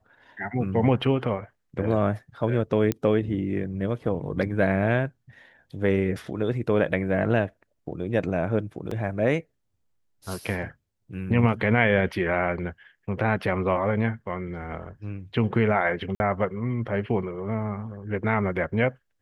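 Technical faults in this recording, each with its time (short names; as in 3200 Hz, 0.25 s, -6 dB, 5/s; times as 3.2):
2.92 pop -12 dBFS
8.91 gap 4 ms
16.15–16.2 gap 51 ms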